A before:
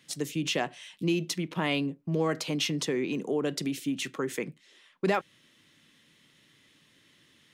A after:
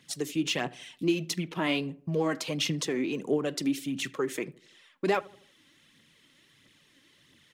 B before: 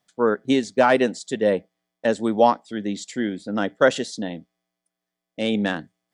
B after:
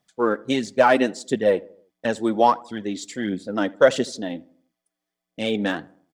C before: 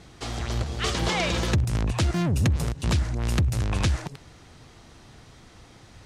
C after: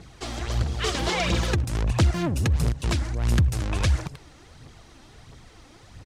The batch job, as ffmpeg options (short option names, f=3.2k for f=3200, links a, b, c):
-filter_complex "[0:a]aphaser=in_gain=1:out_gain=1:delay=3.9:decay=0.49:speed=1.5:type=triangular,asplit=2[a][b];[b]adelay=80,lowpass=f=1.3k:p=1,volume=-21dB,asplit=2[c][d];[d]adelay=80,lowpass=f=1.3k:p=1,volume=0.49,asplit=2[e][f];[f]adelay=80,lowpass=f=1.3k:p=1,volume=0.49,asplit=2[g][h];[h]adelay=80,lowpass=f=1.3k:p=1,volume=0.49[i];[c][e][g][i]amix=inputs=4:normalize=0[j];[a][j]amix=inputs=2:normalize=0,volume=-1dB"